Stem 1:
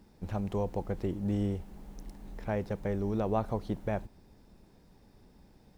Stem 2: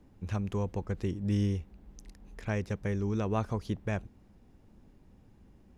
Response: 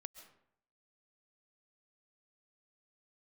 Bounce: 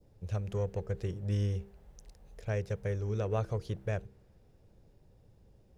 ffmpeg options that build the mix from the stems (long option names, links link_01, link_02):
-filter_complex "[0:a]lowshelf=frequency=500:gain=-10,alimiter=level_in=4dB:limit=-24dB:level=0:latency=1:release=245,volume=-4dB,asoftclip=type=hard:threshold=-39dB,volume=-13.5dB[link_01];[1:a]equalizer=frequency=125:width_type=o:width=1:gain=6,equalizer=frequency=250:width_type=o:width=1:gain=-11,equalizer=frequency=500:width_type=o:width=1:gain=9,equalizer=frequency=1000:width_type=o:width=1:gain=-6,equalizer=frequency=2000:width_type=o:width=1:gain=-6,volume=-1,volume=-3dB[link_02];[link_01][link_02]amix=inputs=2:normalize=0,bandreject=frequency=65.89:width_type=h:width=4,bandreject=frequency=131.78:width_type=h:width=4,bandreject=frequency=197.67:width_type=h:width=4,bandreject=frequency=263.56:width_type=h:width=4,bandreject=frequency=329.45:width_type=h:width=4,bandreject=frequency=395.34:width_type=h:width=4,bandreject=frequency=461.23:width_type=h:width=4,adynamicequalizer=threshold=0.00112:dfrequency=1700:dqfactor=1.1:tfrequency=1700:tqfactor=1.1:attack=5:release=100:ratio=0.375:range=3.5:mode=boostabove:tftype=bell"